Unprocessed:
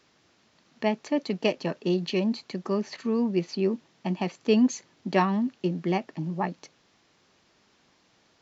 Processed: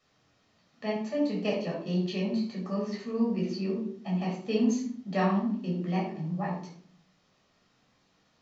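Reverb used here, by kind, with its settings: simulated room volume 760 m³, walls furnished, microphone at 6.3 m; trim -12.5 dB

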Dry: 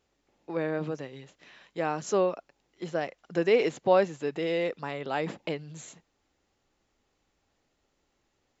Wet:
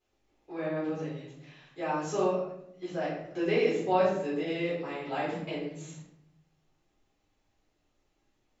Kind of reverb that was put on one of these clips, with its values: simulated room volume 190 m³, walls mixed, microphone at 3.9 m; trim -14 dB

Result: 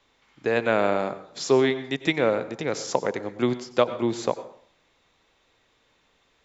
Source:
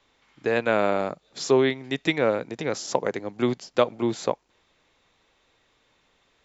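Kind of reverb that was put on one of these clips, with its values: plate-style reverb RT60 0.53 s, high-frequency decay 0.7×, pre-delay 80 ms, DRR 12.5 dB

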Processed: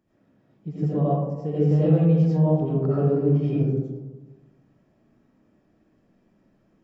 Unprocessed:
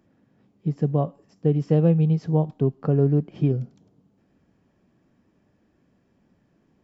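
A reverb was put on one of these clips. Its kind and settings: algorithmic reverb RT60 1.2 s, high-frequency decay 0.35×, pre-delay 45 ms, DRR -9.5 dB; trim -9 dB

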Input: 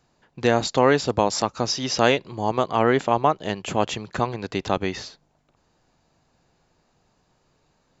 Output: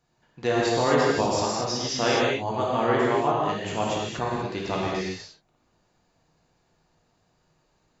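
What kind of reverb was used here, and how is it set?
gated-style reverb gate 270 ms flat, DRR -5.5 dB; trim -8.5 dB

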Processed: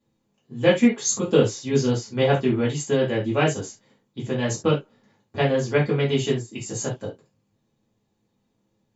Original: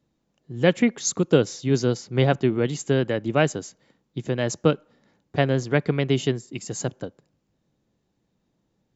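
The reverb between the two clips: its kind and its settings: gated-style reverb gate 100 ms falling, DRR -7 dB; trim -6.5 dB

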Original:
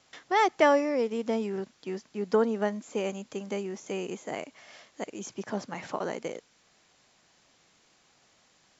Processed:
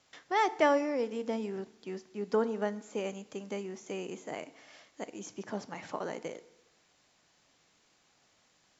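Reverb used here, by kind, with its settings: FDN reverb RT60 0.94 s, low-frequency decay 1.1×, high-frequency decay 0.8×, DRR 14 dB; trim -4.5 dB

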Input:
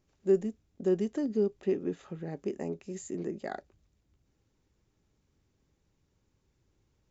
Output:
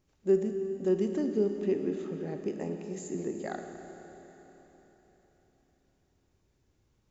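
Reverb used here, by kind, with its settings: Schroeder reverb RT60 4 s, combs from 26 ms, DRR 5 dB

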